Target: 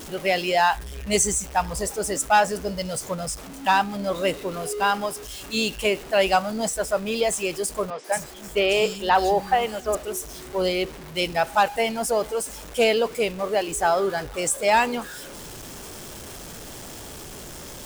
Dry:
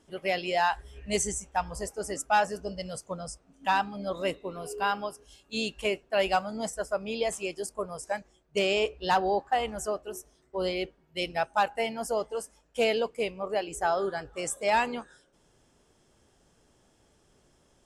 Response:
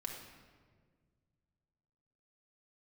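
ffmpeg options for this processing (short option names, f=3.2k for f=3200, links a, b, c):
-filter_complex "[0:a]aeval=exprs='val(0)+0.5*0.01*sgn(val(0))':c=same,highshelf=f=6.3k:g=4.5,asettb=1/sr,asplit=3[a][b][c];[a]atrim=end=7.904[d];[b]atrim=start=7.9:end=9.95,asetpts=PTS-STARTPTS,afade=t=in:d=0.004:c=qsin,afade=t=out:st=2.046:d=0.004:c=qsin,acrossover=split=210|4200[e][f][g];[g]adelay=140[h];[e]adelay=260[i];[i][f][h]amix=inputs=3:normalize=0,atrim=end_sample=90405[j];[c]atrim=start=9.946[k];[d][j]acrossfade=d=0.004:c1=hsin:c2=qsin[l];[l][k]acrossfade=d=0.004:c1=qsin:c2=hsin,volume=5.5dB"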